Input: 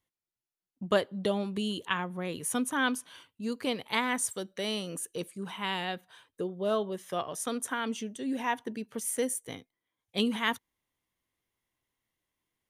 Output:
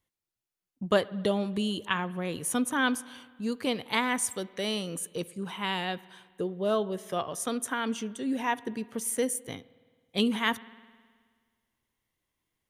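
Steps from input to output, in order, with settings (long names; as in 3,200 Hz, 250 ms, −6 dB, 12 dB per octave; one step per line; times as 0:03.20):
low-shelf EQ 130 Hz +4.5 dB
on a send: convolution reverb RT60 1.7 s, pre-delay 53 ms, DRR 19.5 dB
on the sum: level +1.5 dB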